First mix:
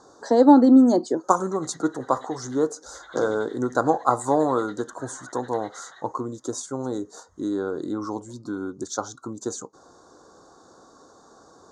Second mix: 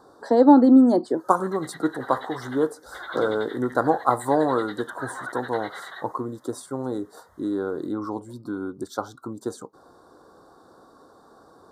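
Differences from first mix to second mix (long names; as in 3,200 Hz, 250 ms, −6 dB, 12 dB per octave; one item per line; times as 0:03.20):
first sound +10.5 dB
master: remove low-pass with resonance 6,600 Hz, resonance Q 8.6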